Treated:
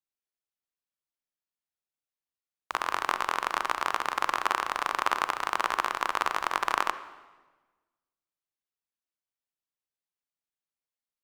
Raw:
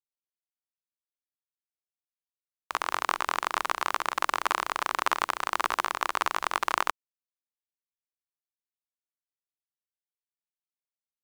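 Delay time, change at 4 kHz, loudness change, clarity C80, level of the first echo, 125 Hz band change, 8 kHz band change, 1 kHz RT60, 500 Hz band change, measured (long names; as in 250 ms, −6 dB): no echo audible, −1.0 dB, 0.0 dB, 14.5 dB, no echo audible, can't be measured, −2.5 dB, 1.2 s, +0.5 dB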